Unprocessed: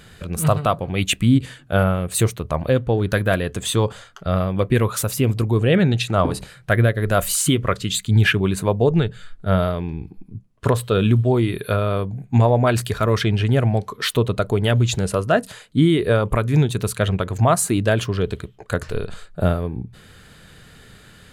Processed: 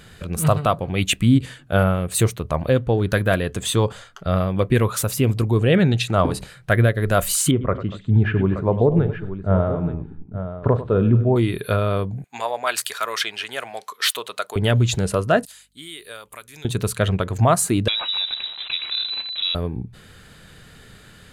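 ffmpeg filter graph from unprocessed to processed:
-filter_complex "[0:a]asettb=1/sr,asplit=3[a][b][c];[a]atrim=end=7.514[d];[b]atrim=start=7.51:end=11.36,asetpts=PTS-STARTPTS,afade=t=in:d=0.004:c=qsin,afade=t=out:st=3.846:d=0.004:c=qsin,lowpass=1.1k,aecho=1:1:41|97|238|875:0.133|0.224|0.126|0.282,atrim=end_sample=169785[e];[c]atrim=start=11.356[f];[d][e]acrossfade=d=0.004:c1=hsin:c2=qsin[g];[g][f]acrossfade=d=0.004:c1=qsin:c2=hsin,asettb=1/sr,asplit=3[h][i][j];[h]atrim=end=12.244[k];[i]atrim=start=12.24:end=14.56,asetpts=PTS-STARTPTS,afade=t=in:d=0.004:c=qsin,afade=t=out:st=2.316:d=0.004:c=qsin,highpass=920,highshelf=f=3.3k:g=6[l];[j]atrim=start=14.556[m];[k][l]acrossfade=d=0.004:c1=hsin:c2=qsin[n];[n][m]acrossfade=d=0.004:c1=qsin:c2=hsin,asettb=1/sr,asplit=3[o][p][q];[o]atrim=end=15.454[r];[p]atrim=start=15.45:end=16.65,asetpts=PTS-STARTPTS,afade=t=in:d=0.004:c=qsin,afade=t=out:st=1.196:d=0.004:c=qsin,aderivative,aeval=exprs='val(0)+0.000355*(sin(2*PI*50*n/s)+sin(2*PI*2*50*n/s)/2+sin(2*PI*3*50*n/s)/3+sin(2*PI*4*50*n/s)/4+sin(2*PI*5*50*n/s)/5)':c=same[s];[q]atrim=start=16.646[t];[r][s]acrossfade=d=0.004:c1=hsin:c2=qsin[u];[u][t]acrossfade=d=0.004:c1=qsin:c2=hsin,asettb=1/sr,asplit=3[v][w][x];[v]atrim=end=17.884[y];[w]atrim=start=17.88:end=19.55,asetpts=PTS-STARTPTS,afade=t=in:d=0.004:c=qsin,afade=t=out:st=1.666:d=0.004:c=qsin,aeval=exprs='val(0)+0.5*0.0376*sgn(val(0))':c=same,acompressor=threshold=-21dB:ratio=3:attack=3.2:release=140:knee=1:detection=peak,lowpass=f=3.4k:t=q:w=0.5098,lowpass=f=3.4k:t=q:w=0.6013,lowpass=f=3.4k:t=q:w=0.9,lowpass=f=3.4k:t=q:w=2.563,afreqshift=-4000[z];[x]atrim=start=19.546[aa];[y][z]acrossfade=d=0.004:c1=hsin:c2=qsin[ab];[ab][aa]acrossfade=d=0.004:c1=qsin:c2=hsin"

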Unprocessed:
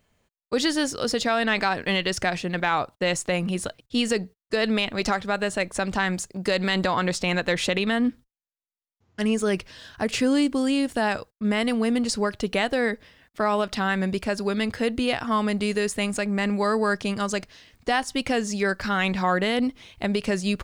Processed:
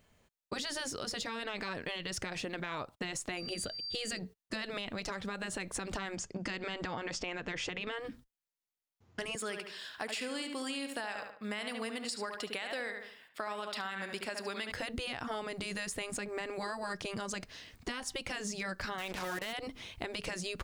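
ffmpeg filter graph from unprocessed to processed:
-filter_complex "[0:a]asettb=1/sr,asplit=3[a][b][c];[a]atrim=end=3.374[d];[b]atrim=start=3.37:end=4.19,asetpts=PTS-STARTPTS,afade=t=in:d=0.004:c=qsin,afade=t=out:st=0.816:d=0.004:c=qsin,equalizer=f=980:t=o:w=0.31:g=-14,bandreject=f=5.5k:w=9.2,aeval=exprs='val(0)+0.0141*sin(2*PI*4700*n/s)':c=same[e];[c]atrim=start=4.186[f];[d][e]acrossfade=d=0.004:c1=hsin:c2=qsin[g];[g][f]acrossfade=d=0.004:c1=qsin:c2=hsin,asettb=1/sr,asplit=3[h][i][j];[h]atrim=end=6.154[k];[i]atrim=start=6.15:end=7.99,asetpts=PTS-STARTPTS,afade=t=in:d=0.004:c=qsin,afade=t=out:st=1.836:d=0.004:c=qsin,lowpass=f=6.8k:w=0.5412,lowpass=f=6.8k:w=1.3066,equalizer=f=4k:w=7.8:g=-12.5[l];[j]atrim=start=7.986[m];[k][l]acrossfade=d=0.004:c1=hsin:c2=qsin[n];[n][m]acrossfade=d=0.004:c1=qsin:c2=hsin,asettb=1/sr,asplit=3[o][p][q];[o]atrim=end=9.354[r];[p]atrim=start=9.35:end=14.72,asetpts=PTS-STARTPTS,afade=t=in:d=0.004:c=qsin,afade=t=out:st=5.366:d=0.004:c=qsin,highpass=f=1.3k:p=1,bandreject=f=6.1k:w=5.5,asplit=2[s][t];[t]adelay=72,lowpass=f=3.1k:p=1,volume=-7dB,asplit=2[u][v];[v]adelay=72,lowpass=f=3.1k:p=1,volume=0.37,asplit=2[w][x];[x]adelay=72,lowpass=f=3.1k:p=1,volume=0.37,asplit=2[y][z];[z]adelay=72,lowpass=f=3.1k:p=1,volume=0.37[aa];[s][u][w][y][aa]amix=inputs=5:normalize=0,atrim=end_sample=236817[ab];[q]atrim=start=14.716[ac];[r][ab]acrossfade=d=0.004:c1=hsin:c2=qsin[ad];[ad][ac]acrossfade=d=0.004:c1=qsin:c2=hsin,asettb=1/sr,asplit=3[ae][af][ag];[ae]atrim=end=18.984[ah];[af]atrim=start=18.98:end=19.53,asetpts=PTS-STARTPTS,afade=t=in:d=0.004:c=qsin,afade=t=out:st=0.546:d=0.004:c=qsin,equalizer=f=200:w=3.5:g=-13,acrusher=bits=4:mix=0:aa=0.5[ai];[ag]atrim=start=19.526[aj];[ah][ai]acrossfade=d=0.004:c1=hsin:c2=qsin[ak];[ak][aj]acrossfade=d=0.004:c1=qsin:c2=hsin,afftfilt=real='re*lt(hypot(re,im),0.355)':imag='im*lt(hypot(re,im),0.355)':win_size=1024:overlap=0.75,alimiter=limit=-20.5dB:level=0:latency=1:release=73,acompressor=threshold=-35dB:ratio=6"

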